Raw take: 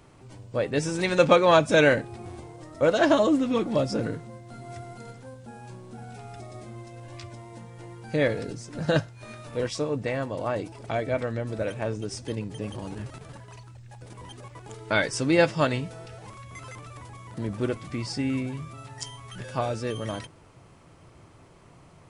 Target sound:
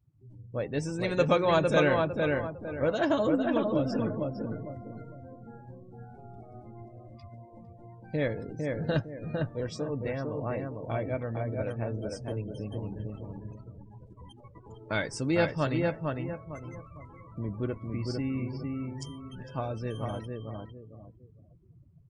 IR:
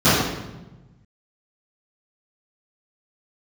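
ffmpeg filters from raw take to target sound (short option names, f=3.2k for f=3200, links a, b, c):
-filter_complex "[0:a]asplit=2[a][b];[b]adelay=454,lowpass=f=2.7k:p=1,volume=-3dB,asplit=2[c][d];[d]adelay=454,lowpass=f=2.7k:p=1,volume=0.34,asplit=2[e][f];[f]adelay=454,lowpass=f=2.7k:p=1,volume=0.34,asplit=2[g][h];[h]adelay=454,lowpass=f=2.7k:p=1,volume=0.34[i];[c][e][g][i]amix=inputs=4:normalize=0[j];[a][j]amix=inputs=2:normalize=0,afftdn=nr=29:nf=-40,lowshelf=f=210:g=7,volume=-7.5dB"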